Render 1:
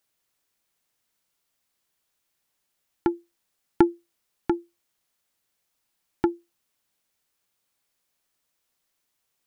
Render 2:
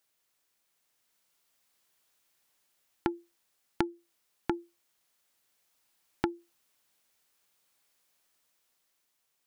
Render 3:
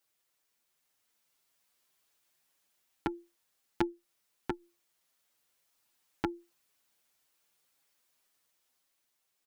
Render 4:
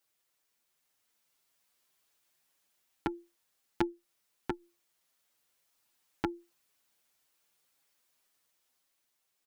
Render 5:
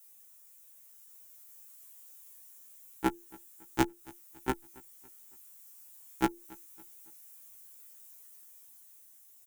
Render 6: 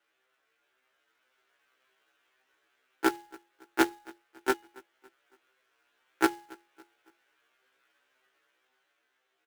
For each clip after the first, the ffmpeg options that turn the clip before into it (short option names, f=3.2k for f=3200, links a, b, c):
-af "dynaudnorm=f=340:g=7:m=4dB,lowshelf=f=250:g=-6,acompressor=threshold=-26dB:ratio=16"
-filter_complex "[0:a]asplit=2[a][b];[b]adelay=6.7,afreqshift=1.9[c];[a][c]amix=inputs=2:normalize=1,volume=1dB"
-af anull
-af "aecho=1:1:279|558|837:0.0631|0.0278|0.0122,aexciter=amount=4.5:drive=6.1:freq=6.3k,afftfilt=real='re*1.73*eq(mod(b,3),0)':imag='im*1.73*eq(mod(b,3),0)':win_size=2048:overlap=0.75,volume=8.5dB"
-af "highpass=f=300:w=0.5412,highpass=f=300:w=1.3066,equalizer=f=400:t=q:w=4:g=5,equalizer=f=960:t=q:w=4:g=-3,equalizer=f=1.5k:t=q:w=4:g=8,lowpass=f=3.2k:w=0.5412,lowpass=f=3.2k:w=1.3066,bandreject=f=416.4:t=h:w=4,bandreject=f=832.8:t=h:w=4,bandreject=f=1.2492k:t=h:w=4,bandreject=f=1.6656k:t=h:w=4,bandreject=f=2.082k:t=h:w=4,bandreject=f=2.4984k:t=h:w=4,bandreject=f=2.9148k:t=h:w=4,bandreject=f=3.3312k:t=h:w=4,bandreject=f=3.7476k:t=h:w=4,bandreject=f=4.164k:t=h:w=4,bandreject=f=4.5804k:t=h:w=4,bandreject=f=4.9968k:t=h:w=4,bandreject=f=5.4132k:t=h:w=4,bandreject=f=5.8296k:t=h:w=4,bandreject=f=6.246k:t=h:w=4,bandreject=f=6.6624k:t=h:w=4,bandreject=f=7.0788k:t=h:w=4,bandreject=f=7.4952k:t=h:w=4,bandreject=f=7.9116k:t=h:w=4,bandreject=f=8.328k:t=h:w=4,bandreject=f=8.7444k:t=h:w=4,bandreject=f=9.1608k:t=h:w=4,bandreject=f=9.5772k:t=h:w=4,bandreject=f=9.9936k:t=h:w=4,bandreject=f=10.41k:t=h:w=4,bandreject=f=10.8264k:t=h:w=4,bandreject=f=11.2428k:t=h:w=4,bandreject=f=11.6592k:t=h:w=4,bandreject=f=12.0756k:t=h:w=4,bandreject=f=12.492k:t=h:w=4,bandreject=f=12.9084k:t=h:w=4,bandreject=f=13.3248k:t=h:w=4,bandreject=f=13.7412k:t=h:w=4,bandreject=f=14.1576k:t=h:w=4,bandreject=f=14.574k:t=h:w=4,bandreject=f=14.9904k:t=h:w=4,bandreject=f=15.4068k:t=h:w=4,bandreject=f=15.8232k:t=h:w=4,bandreject=f=16.2396k:t=h:w=4,acrusher=bits=2:mode=log:mix=0:aa=0.000001,volume=3dB"